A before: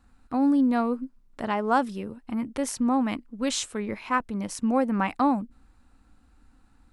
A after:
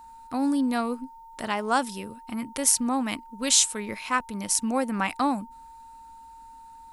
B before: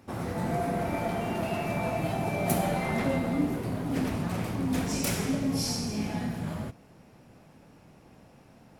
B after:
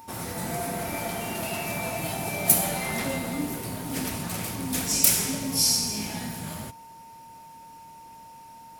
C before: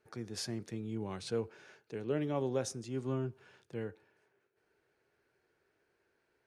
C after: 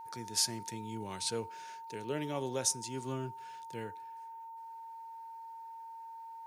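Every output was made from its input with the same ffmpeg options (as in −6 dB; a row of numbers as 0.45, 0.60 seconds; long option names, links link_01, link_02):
-af "crystalizer=i=6:c=0,aeval=exprs='val(0)+0.00891*sin(2*PI*910*n/s)':channel_layout=same,volume=-3.5dB"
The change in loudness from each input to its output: +1.0, +4.0, 0.0 LU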